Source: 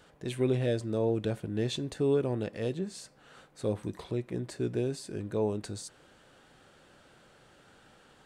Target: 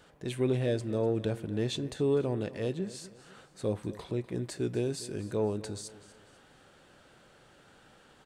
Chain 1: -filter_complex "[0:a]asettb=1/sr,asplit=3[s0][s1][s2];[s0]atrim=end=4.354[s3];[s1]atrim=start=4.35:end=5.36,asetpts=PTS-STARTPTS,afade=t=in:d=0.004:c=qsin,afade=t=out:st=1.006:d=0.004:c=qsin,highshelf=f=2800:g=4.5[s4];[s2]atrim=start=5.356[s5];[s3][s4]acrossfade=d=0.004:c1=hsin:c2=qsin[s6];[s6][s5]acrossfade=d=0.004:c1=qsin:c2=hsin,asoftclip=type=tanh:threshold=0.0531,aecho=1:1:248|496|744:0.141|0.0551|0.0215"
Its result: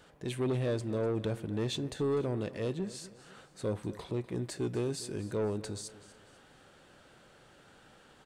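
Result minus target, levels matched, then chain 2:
saturation: distortion +16 dB
-filter_complex "[0:a]asettb=1/sr,asplit=3[s0][s1][s2];[s0]atrim=end=4.354[s3];[s1]atrim=start=4.35:end=5.36,asetpts=PTS-STARTPTS,afade=t=in:d=0.004:c=qsin,afade=t=out:st=1.006:d=0.004:c=qsin,highshelf=f=2800:g=4.5[s4];[s2]atrim=start=5.356[s5];[s3][s4]acrossfade=d=0.004:c1=hsin:c2=qsin[s6];[s6][s5]acrossfade=d=0.004:c1=qsin:c2=hsin,asoftclip=type=tanh:threshold=0.178,aecho=1:1:248|496|744:0.141|0.0551|0.0215"

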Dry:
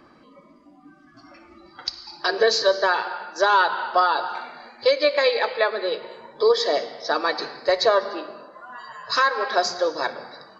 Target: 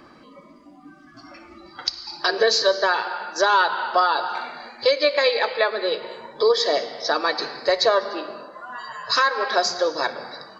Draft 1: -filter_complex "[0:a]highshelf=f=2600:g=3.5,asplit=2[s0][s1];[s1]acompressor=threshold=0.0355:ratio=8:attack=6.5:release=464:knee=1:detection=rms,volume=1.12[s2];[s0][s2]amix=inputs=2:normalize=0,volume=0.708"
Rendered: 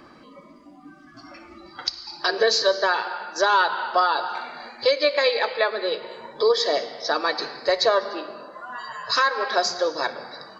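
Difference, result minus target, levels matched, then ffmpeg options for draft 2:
compression: peak gain reduction +5.5 dB
-filter_complex "[0:a]highshelf=f=2600:g=3.5,asplit=2[s0][s1];[s1]acompressor=threshold=0.075:ratio=8:attack=6.5:release=464:knee=1:detection=rms,volume=1.12[s2];[s0][s2]amix=inputs=2:normalize=0,volume=0.708"

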